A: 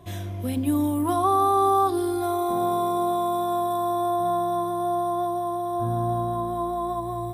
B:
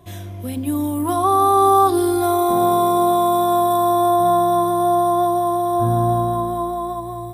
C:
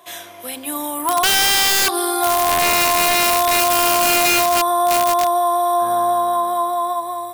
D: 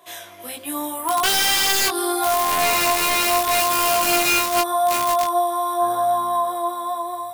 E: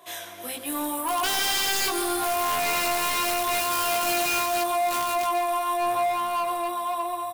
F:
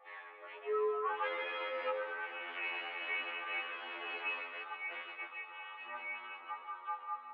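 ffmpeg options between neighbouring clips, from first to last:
ffmpeg -i in.wav -af "highshelf=frequency=7600:gain=4.5,dynaudnorm=framelen=290:gausssize=9:maxgain=8.5dB" out.wav
ffmpeg -i in.wav -af "highpass=810,aeval=exprs='(mod(6.31*val(0)+1,2)-1)/6.31':channel_layout=same,acompressor=threshold=-24dB:ratio=2.5,volume=9dB" out.wav
ffmpeg -i in.wav -af "flanger=delay=18:depth=2.9:speed=0.8" out.wav
ffmpeg -i in.wav -filter_complex "[0:a]asoftclip=type=tanh:threshold=-23dB,asplit=2[link_01][link_02];[link_02]aecho=0:1:139|278|417|556|695|834|973:0.251|0.148|0.0874|0.0516|0.0304|0.018|0.0106[link_03];[link_01][link_03]amix=inputs=2:normalize=0" out.wav
ffmpeg -i in.wav -af "highpass=frequency=160:width_type=q:width=0.5412,highpass=frequency=160:width_type=q:width=1.307,lowpass=frequency=2300:width_type=q:width=0.5176,lowpass=frequency=2300:width_type=q:width=0.7071,lowpass=frequency=2300:width_type=q:width=1.932,afreqshift=130,afftfilt=real='re*2*eq(mod(b,4),0)':imag='im*2*eq(mod(b,4),0)':win_size=2048:overlap=0.75,volume=-4.5dB" out.wav

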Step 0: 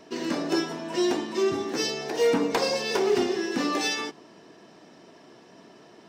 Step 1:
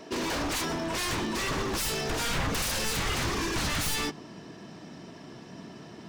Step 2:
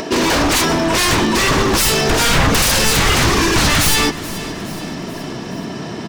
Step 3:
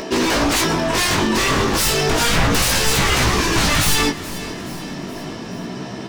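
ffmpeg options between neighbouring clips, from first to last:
ffmpeg -i in.wav -af "aeval=exprs='0.0316*(abs(mod(val(0)/0.0316+3,4)-2)-1)':channel_layout=same,asubboost=boost=4.5:cutoff=200,volume=4.5dB" out.wav
ffmpeg -i in.wav -filter_complex "[0:a]aecho=1:1:425|850|1275|1700:0.141|0.0692|0.0339|0.0166,asplit=2[link_01][link_02];[link_02]acompressor=mode=upward:threshold=-32dB:ratio=2.5,volume=2dB[link_03];[link_01][link_03]amix=inputs=2:normalize=0,volume=8.5dB" out.wav
ffmpeg -i in.wav -af "flanger=delay=15.5:depth=6.9:speed=0.33" out.wav

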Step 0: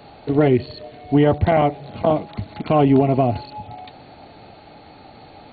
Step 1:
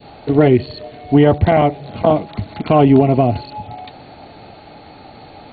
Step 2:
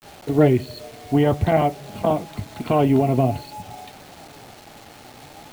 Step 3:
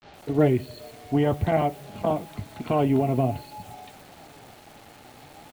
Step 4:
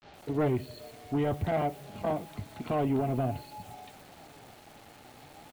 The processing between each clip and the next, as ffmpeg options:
ffmpeg -i in.wav -af "adynamicequalizer=threshold=0.0316:dfrequency=1100:dqfactor=0.72:tfrequency=1100:tqfactor=0.72:attack=5:release=100:ratio=0.375:range=1.5:mode=cutabove:tftype=bell,volume=4.5dB" out.wav
ffmpeg -i in.wav -af "flanger=delay=4.9:depth=3.9:regen=67:speed=0.52:shape=sinusoidal,acrusher=bits=6:mix=0:aa=0.000001,volume=-1.5dB" out.wav
ffmpeg -i in.wav -filter_complex "[0:a]acrossover=split=5300[link_01][link_02];[link_02]adelay=120[link_03];[link_01][link_03]amix=inputs=2:normalize=0,volume=-4.5dB" out.wav
ffmpeg -i in.wav -af "asoftclip=type=tanh:threshold=-17.5dB,volume=-4dB" out.wav

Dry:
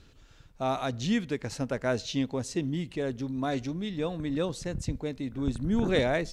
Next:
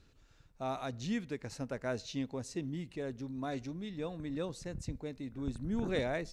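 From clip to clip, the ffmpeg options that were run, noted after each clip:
ffmpeg -i in.wav -af "equalizer=frequency=3200:width_type=o:width=0.21:gain=-5.5,volume=-8dB" out.wav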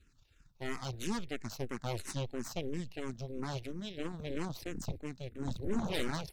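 ffmpeg -i in.wav -filter_complex "[0:a]equalizer=frequency=560:width_type=o:width=2.2:gain=-9.5,aeval=exprs='0.0596*(cos(1*acos(clip(val(0)/0.0596,-1,1)))-cos(1*PI/2))+0.0211*(cos(8*acos(clip(val(0)/0.0596,-1,1)))-cos(8*PI/2))':channel_layout=same,asplit=2[link_01][link_02];[link_02]afreqshift=-3[link_03];[link_01][link_03]amix=inputs=2:normalize=1,volume=2dB" out.wav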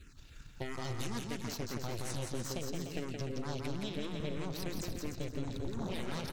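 ffmpeg -i in.wav -filter_complex "[0:a]alimiter=level_in=8.5dB:limit=-24dB:level=0:latency=1,volume=-8.5dB,acompressor=threshold=-48dB:ratio=6,asplit=2[link_01][link_02];[link_02]aecho=0:1:170|297.5|393.1|464.8|518.6:0.631|0.398|0.251|0.158|0.1[link_03];[link_01][link_03]amix=inputs=2:normalize=0,volume=11dB" out.wav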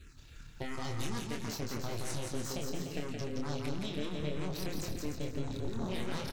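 ffmpeg -i in.wav -filter_complex "[0:a]asplit=2[link_01][link_02];[link_02]adelay=27,volume=-5dB[link_03];[link_01][link_03]amix=inputs=2:normalize=0" out.wav

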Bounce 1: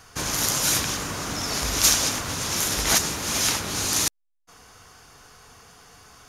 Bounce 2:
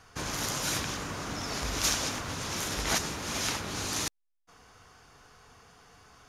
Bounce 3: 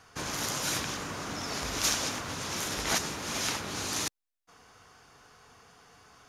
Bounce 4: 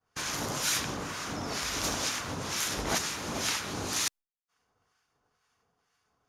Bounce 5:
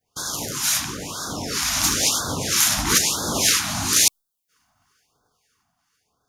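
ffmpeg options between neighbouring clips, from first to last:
ffmpeg -i in.wav -af "lowpass=frequency=3900:poles=1,volume=-5dB" out.wav
ffmpeg -i in.wav -af "lowshelf=frequency=66:gain=-11" out.wav
ffmpeg -i in.wav -filter_complex "[0:a]agate=range=-33dB:threshold=-44dB:ratio=3:detection=peak,asplit=2[link_01][link_02];[link_02]asoftclip=type=tanh:threshold=-23.5dB,volume=-4dB[link_03];[link_01][link_03]amix=inputs=2:normalize=0,acrossover=split=1100[link_04][link_05];[link_04]aeval=exprs='val(0)*(1-0.7/2+0.7/2*cos(2*PI*2.1*n/s))':channel_layout=same[link_06];[link_05]aeval=exprs='val(0)*(1-0.7/2-0.7/2*cos(2*PI*2.1*n/s))':channel_layout=same[link_07];[link_06][link_07]amix=inputs=2:normalize=0" out.wav
ffmpeg -i in.wav -af "highshelf=frequency=6500:gain=10,dynaudnorm=framelen=240:gausssize=13:maxgain=7dB,afftfilt=real='re*(1-between(b*sr/1024,400*pow(2400/400,0.5+0.5*sin(2*PI*1*pts/sr))/1.41,400*pow(2400/400,0.5+0.5*sin(2*PI*1*pts/sr))*1.41))':imag='im*(1-between(b*sr/1024,400*pow(2400/400,0.5+0.5*sin(2*PI*1*pts/sr))/1.41,400*pow(2400/400,0.5+0.5*sin(2*PI*1*pts/sr))*1.41))':win_size=1024:overlap=0.75,volume=3dB" out.wav

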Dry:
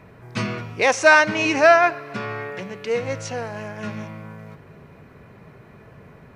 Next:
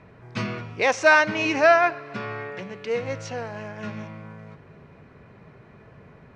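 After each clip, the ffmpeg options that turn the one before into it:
ffmpeg -i in.wav -af "lowpass=5900,volume=-3dB" out.wav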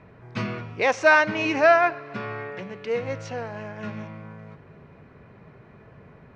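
ffmpeg -i in.wav -af "highshelf=frequency=5000:gain=-8" out.wav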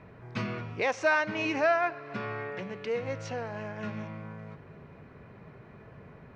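ffmpeg -i in.wav -af "acompressor=threshold=-34dB:ratio=1.5,volume=-1dB" out.wav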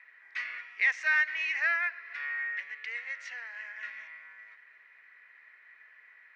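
ffmpeg -i in.wav -af "highpass=frequency=1900:width_type=q:width=8.4,volume=-6dB" out.wav

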